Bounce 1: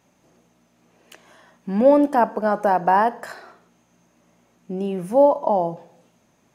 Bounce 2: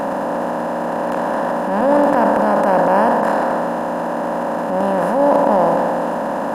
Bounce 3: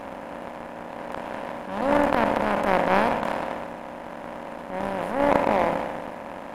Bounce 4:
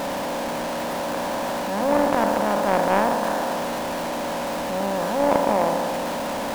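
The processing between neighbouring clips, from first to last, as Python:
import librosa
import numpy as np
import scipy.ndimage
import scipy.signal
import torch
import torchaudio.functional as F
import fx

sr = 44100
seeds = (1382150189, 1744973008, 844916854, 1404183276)

y1 = fx.bin_compress(x, sr, power=0.2)
y1 = fx.transient(y1, sr, attack_db=-8, sustain_db=6)
y1 = y1 * librosa.db_to_amplitude(-3.5)
y2 = fx.power_curve(y1, sr, exponent=2.0)
y3 = y2 + 0.5 * 10.0 ** (-22.0 / 20.0) * np.sign(y2)
y3 = y3 * librosa.db_to_amplitude(-1.0)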